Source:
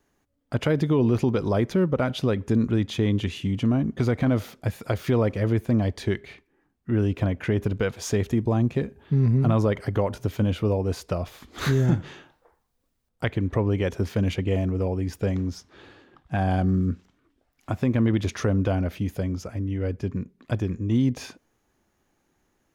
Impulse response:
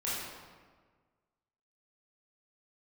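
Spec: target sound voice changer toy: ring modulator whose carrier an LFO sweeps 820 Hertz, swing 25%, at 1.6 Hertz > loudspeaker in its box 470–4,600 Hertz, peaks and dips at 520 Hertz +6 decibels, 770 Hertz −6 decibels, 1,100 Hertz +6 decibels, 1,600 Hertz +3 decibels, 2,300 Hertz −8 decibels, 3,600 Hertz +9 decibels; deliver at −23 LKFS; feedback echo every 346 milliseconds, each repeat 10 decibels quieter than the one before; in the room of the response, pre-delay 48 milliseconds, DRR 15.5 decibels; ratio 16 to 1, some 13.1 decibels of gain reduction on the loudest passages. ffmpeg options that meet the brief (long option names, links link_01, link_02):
-filter_complex "[0:a]acompressor=threshold=-30dB:ratio=16,aecho=1:1:346|692|1038|1384:0.316|0.101|0.0324|0.0104,asplit=2[link_01][link_02];[1:a]atrim=start_sample=2205,adelay=48[link_03];[link_02][link_03]afir=irnorm=-1:irlink=0,volume=-21.5dB[link_04];[link_01][link_04]amix=inputs=2:normalize=0,aeval=exprs='val(0)*sin(2*PI*820*n/s+820*0.25/1.6*sin(2*PI*1.6*n/s))':channel_layout=same,highpass=470,equalizer=frequency=520:width_type=q:width=4:gain=6,equalizer=frequency=770:width_type=q:width=4:gain=-6,equalizer=frequency=1100:width_type=q:width=4:gain=6,equalizer=frequency=1600:width_type=q:width=4:gain=3,equalizer=frequency=2300:width_type=q:width=4:gain=-8,equalizer=frequency=3600:width_type=q:width=4:gain=9,lowpass=frequency=4600:width=0.5412,lowpass=frequency=4600:width=1.3066,volume=13dB"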